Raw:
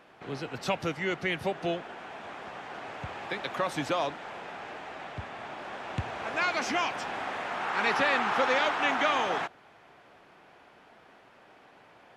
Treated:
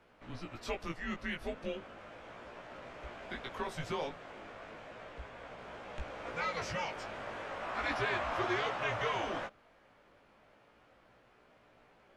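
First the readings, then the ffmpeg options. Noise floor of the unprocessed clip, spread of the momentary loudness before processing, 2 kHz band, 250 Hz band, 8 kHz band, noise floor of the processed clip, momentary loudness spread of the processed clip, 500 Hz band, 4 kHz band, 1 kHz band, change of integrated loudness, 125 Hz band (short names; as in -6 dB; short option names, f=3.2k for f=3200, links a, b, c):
-57 dBFS, 15 LU, -8.5 dB, -7.0 dB, -8.5 dB, -65 dBFS, 16 LU, -7.0 dB, -8.5 dB, -9.0 dB, -8.0 dB, -5.0 dB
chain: -af "afreqshift=-150,flanger=delay=16.5:depth=2.4:speed=0.35,volume=-5dB"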